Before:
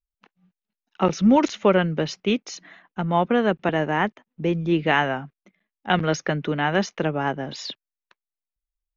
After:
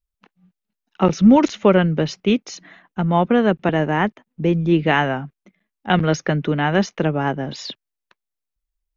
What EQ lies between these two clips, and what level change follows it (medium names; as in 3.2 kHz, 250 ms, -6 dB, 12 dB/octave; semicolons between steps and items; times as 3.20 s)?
bass shelf 320 Hz +6 dB; +1.5 dB